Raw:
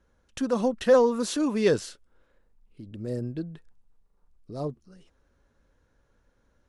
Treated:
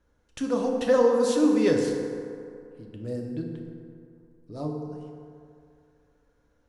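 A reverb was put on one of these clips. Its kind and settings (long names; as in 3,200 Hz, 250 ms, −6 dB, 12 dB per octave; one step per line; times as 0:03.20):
feedback delay network reverb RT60 2.5 s, low-frequency decay 0.85×, high-frequency decay 0.45×, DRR 0.5 dB
level −3 dB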